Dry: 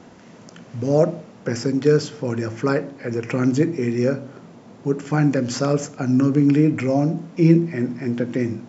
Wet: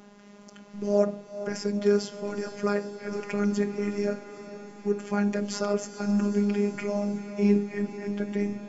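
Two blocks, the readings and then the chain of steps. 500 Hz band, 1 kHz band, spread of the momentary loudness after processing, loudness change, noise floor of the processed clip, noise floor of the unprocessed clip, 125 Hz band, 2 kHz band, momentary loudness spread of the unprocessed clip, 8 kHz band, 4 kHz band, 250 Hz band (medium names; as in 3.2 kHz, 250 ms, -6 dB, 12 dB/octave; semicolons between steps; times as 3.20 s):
-5.5 dB, -6.0 dB, 10 LU, -7.5 dB, -50 dBFS, -45 dBFS, -13.0 dB, -6.0 dB, 11 LU, no reading, -5.5 dB, -7.5 dB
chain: robot voice 204 Hz; on a send: echo that smears into a reverb 470 ms, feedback 67%, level -12 dB; on the sum: trim -4 dB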